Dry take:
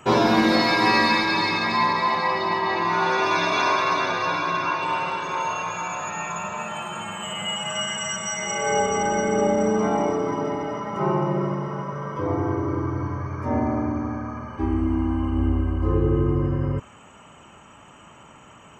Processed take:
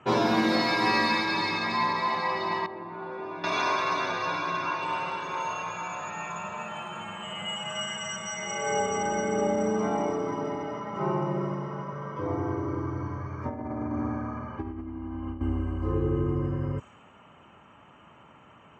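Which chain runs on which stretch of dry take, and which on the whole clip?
0:02.66–0:03.44: resonant band-pass 150 Hz, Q 0.55 + low-shelf EQ 200 Hz −10 dB + flutter between parallel walls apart 8.4 metres, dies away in 0.27 s
0:13.45–0:15.41: high-shelf EQ 4,800 Hz −11 dB + compressor whose output falls as the input rises −26 dBFS, ratio −0.5
whole clip: low-pass that shuts in the quiet parts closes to 2,800 Hz, open at −18.5 dBFS; high-pass filter 59 Hz; level −5.5 dB

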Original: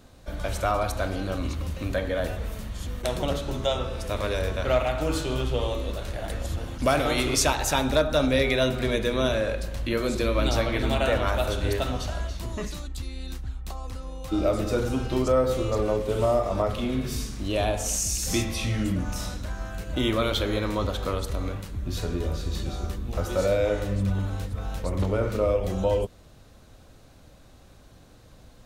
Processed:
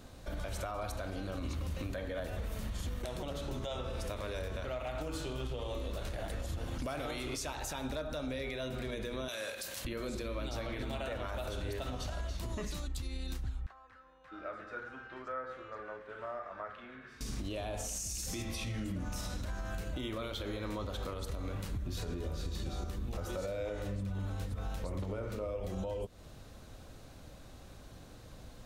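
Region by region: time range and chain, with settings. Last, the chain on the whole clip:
0:09.28–0:09.85: high-pass filter 70 Hz 24 dB per octave + spectral tilt +4.5 dB per octave
0:13.66–0:17.21: resonant band-pass 1,600 Hz, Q 5 + spectral tilt −2 dB per octave
whole clip: downward compressor 6 to 1, threshold −33 dBFS; brickwall limiter −29.5 dBFS

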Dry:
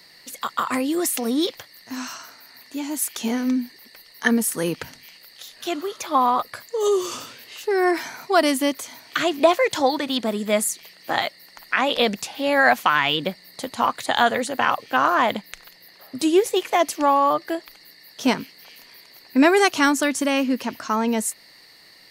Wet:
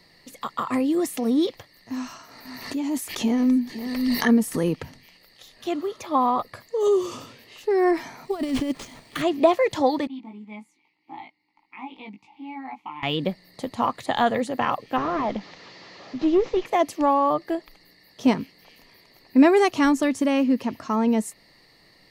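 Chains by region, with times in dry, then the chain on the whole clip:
0:01.94–0:04.65: single-tap delay 512 ms −22 dB + background raised ahead of every attack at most 34 dB per second
0:08.25–0:09.22: parametric band 970 Hz −6.5 dB 2 octaves + compressor whose output falls as the input rises −24 dBFS, ratio −0.5 + sample-rate reduction 13,000 Hz
0:10.07–0:13.03: formant filter u + parametric band 350 Hz −9.5 dB 1.6 octaves + double-tracking delay 19 ms −3 dB
0:14.98–0:16.66: linear delta modulator 32 kbit/s, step −33 dBFS + high-pass filter 170 Hz + tube saturation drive 13 dB, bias 0.25
whole clip: spectral tilt −2.5 dB per octave; notch filter 1,500 Hz, Q 7.4; level −3 dB

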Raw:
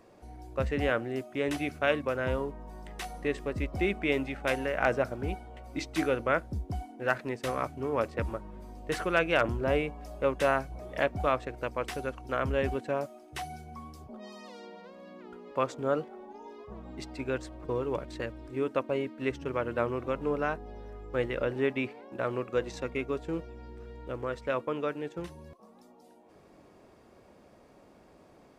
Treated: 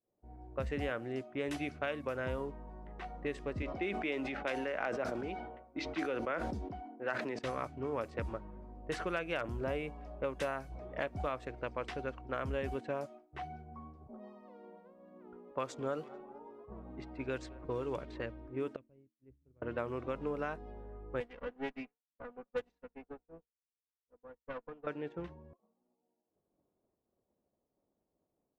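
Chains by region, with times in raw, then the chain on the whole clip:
0:03.62–0:07.39: three-way crossover with the lows and the highs turned down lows −13 dB, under 200 Hz, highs −13 dB, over 6,700 Hz + level that may fall only so fast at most 44 dB per second
0:14.77–0:18.22: high-shelf EQ 3,200 Hz +5.5 dB + repeating echo 222 ms, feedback 60%, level −23.5 dB
0:18.76–0:19.62: guitar amp tone stack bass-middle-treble 10-0-1 + one half of a high-frequency compander decoder only
0:21.20–0:24.87: lower of the sound and its delayed copy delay 4.1 ms + expander for the loud parts 2.5 to 1, over −44 dBFS
whole clip: low-pass that shuts in the quiet parts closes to 750 Hz, open at −25.5 dBFS; downward expander −44 dBFS; downward compressor, threshold −28 dBFS; level −4 dB

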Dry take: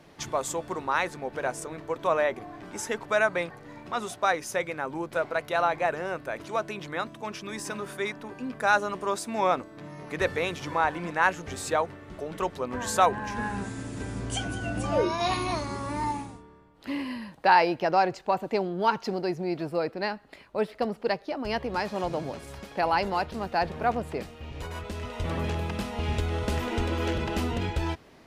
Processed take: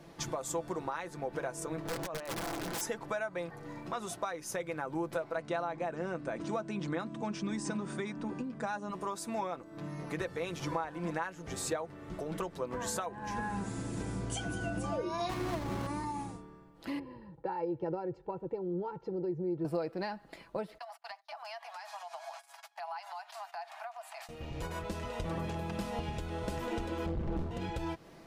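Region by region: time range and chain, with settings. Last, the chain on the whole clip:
0:01.85–0:02.81: compressor whose output falls as the input rises −34 dBFS + wrap-around overflow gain 29.5 dB + highs frequency-modulated by the lows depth 0.64 ms
0:05.37–0:08.91: linear-phase brick-wall low-pass 9,500 Hz + parametric band 230 Hz +10.5 dB 0.91 octaves
0:15.29–0:15.87: each half-wave held at its own peak + high-shelf EQ 4,400 Hz −9 dB + linearly interpolated sample-rate reduction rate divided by 2×
0:16.99–0:19.65: resonant band-pass 120 Hz, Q 0.54 + comb filter 2.2 ms, depth 78%
0:20.78–0:24.29: noise gate −42 dBFS, range −25 dB + Butterworth high-pass 660 Hz 96 dB per octave + downward compressor 10 to 1, threshold −39 dBFS
0:27.06–0:27.51: spectral tilt −4 dB per octave + gain into a clipping stage and back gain 19.5 dB + highs frequency-modulated by the lows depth 0.43 ms
whole clip: downward compressor 16 to 1, threshold −32 dBFS; parametric band 2,500 Hz −4.5 dB 1.8 octaves; comb filter 6 ms, depth 45%

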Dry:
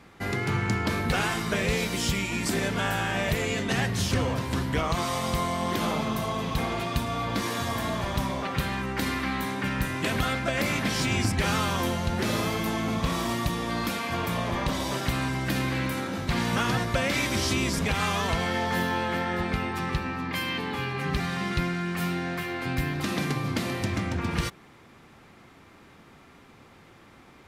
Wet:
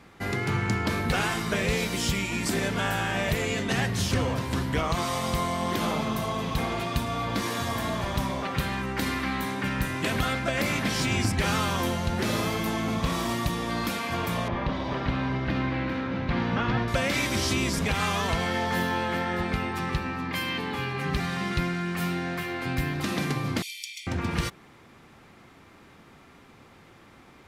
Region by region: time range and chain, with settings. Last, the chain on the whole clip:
0:14.48–0:16.88: high-frequency loss of the air 270 metres + single-tap delay 394 ms −6.5 dB
0:23.62–0:24.07: Butterworth high-pass 2,500 Hz 48 dB per octave + comb filter 0.9 ms, depth 82%
whole clip: no processing

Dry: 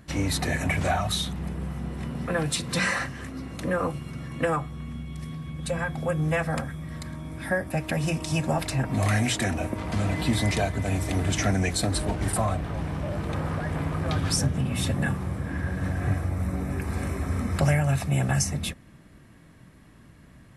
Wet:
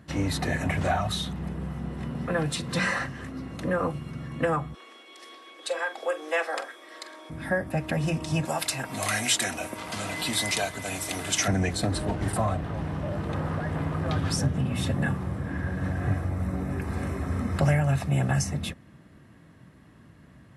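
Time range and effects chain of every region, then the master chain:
0:04.74–0:07.30: Butterworth high-pass 340 Hz 48 dB per octave + parametric band 4,500 Hz +7.5 dB 1.8 octaves + double-tracking delay 45 ms −13.5 dB
0:08.45–0:11.48: spectral tilt +4 dB per octave + notch filter 1,800 Hz, Q 14
whole clip: high-pass filter 69 Hz; high-shelf EQ 4,700 Hz −7.5 dB; notch filter 2,300 Hz, Q 17

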